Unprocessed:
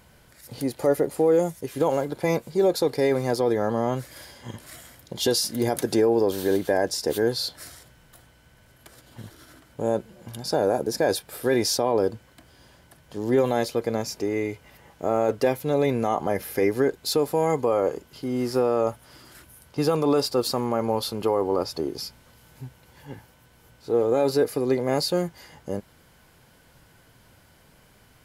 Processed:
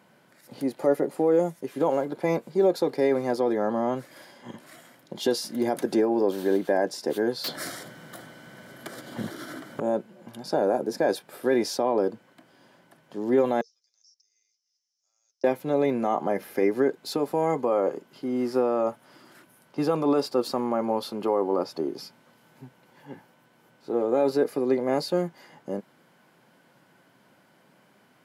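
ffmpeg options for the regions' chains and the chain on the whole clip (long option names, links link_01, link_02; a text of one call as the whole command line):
ffmpeg -i in.wav -filter_complex "[0:a]asettb=1/sr,asplit=3[link_01][link_02][link_03];[link_01]atrim=end=7.444[link_04];[link_02]atrim=start=7.44:end=9.8,asetpts=PTS-STARTPTS,afade=type=in:duration=0.004:curve=qsin,afade=type=out:start_time=2.356:duration=0.004:curve=qsin,bandreject=frequency=2600:width=5.5,aeval=exprs='0.119*sin(PI/2*3.55*val(0)/0.119)':channel_layout=same,equalizer=frequency=930:width=3.3:gain=-5[link_05];[link_03]atrim=start=9.796[link_06];[link_04][link_05]acrossfade=duration=0.004:curve1=hsin:curve2=qsin[link_07];[link_07][link_06]acrossfade=duration=0.004:curve1=qsin:curve2=hsin,asettb=1/sr,asplit=3[link_08][link_09][link_10];[link_08]atrim=end=13.614[link_11];[link_09]atrim=start=13.61:end=15.44,asetpts=PTS-STARTPTS,afade=type=in:duration=0.004:curve=qsin,afade=type=out:start_time=1.826:duration=0.004:curve=qsin,asuperpass=centerf=5600:order=4:qfactor=5.1,acompressor=threshold=-50dB:ratio=4:attack=3.2:release=140:knee=1:detection=peak[link_12];[link_10]atrim=start=15.436[link_13];[link_11][link_12]acrossfade=duration=0.004:curve1=hsin:curve2=qsin[link_14];[link_14][link_13]acrossfade=duration=0.004:curve1=qsin:curve2=hsin,highpass=frequency=170:width=0.5412,highpass=frequency=170:width=1.3066,highshelf=frequency=3100:gain=-11,bandreject=frequency=460:width=12" out.wav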